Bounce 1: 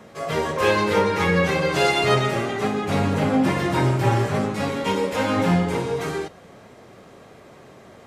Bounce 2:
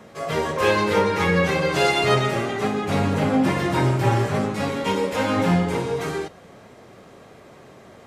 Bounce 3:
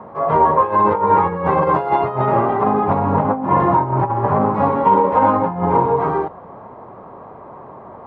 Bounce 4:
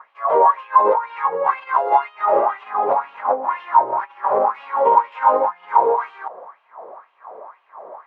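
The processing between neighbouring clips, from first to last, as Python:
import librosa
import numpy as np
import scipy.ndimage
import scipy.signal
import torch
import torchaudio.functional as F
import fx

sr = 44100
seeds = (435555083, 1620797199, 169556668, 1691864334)

y1 = x
y2 = fx.over_compress(y1, sr, threshold_db=-22.0, ratio=-0.5)
y2 = fx.lowpass_res(y2, sr, hz=980.0, q=4.9)
y2 = y2 * librosa.db_to_amplitude(3.0)
y3 = fx.filter_lfo_highpass(y2, sr, shape='sine', hz=2.0, low_hz=480.0, high_hz=2900.0, q=4.4)
y3 = y3 * librosa.db_to_amplitude(-6.0)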